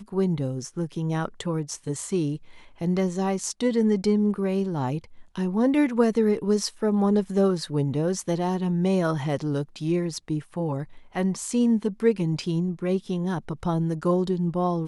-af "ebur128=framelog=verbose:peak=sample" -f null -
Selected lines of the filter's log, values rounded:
Integrated loudness:
  I:         -25.5 LUFS
  Threshold: -35.6 LUFS
Loudness range:
  LRA:         3.4 LU
  Threshold: -45.3 LUFS
  LRA low:   -27.1 LUFS
  LRA high:  -23.7 LUFS
Sample peak:
  Peak:       -8.7 dBFS